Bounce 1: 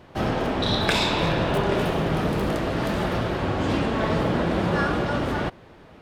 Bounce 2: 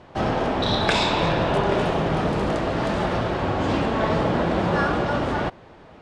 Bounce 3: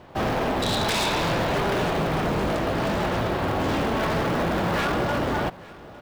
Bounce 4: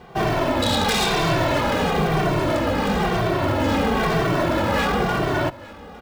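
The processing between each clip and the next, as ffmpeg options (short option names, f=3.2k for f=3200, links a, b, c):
-af "lowpass=f=8.7k:w=0.5412,lowpass=f=8.7k:w=1.3066,equalizer=f=800:w=1.1:g=4"
-af "acrusher=bits=7:mode=log:mix=0:aa=0.000001,aeval=exprs='0.119*(abs(mod(val(0)/0.119+3,4)-2)-1)':c=same,aecho=1:1:856:0.0841"
-filter_complex "[0:a]asplit=2[a][b];[b]adelay=2.1,afreqshift=-1[c];[a][c]amix=inputs=2:normalize=1,volume=6.5dB"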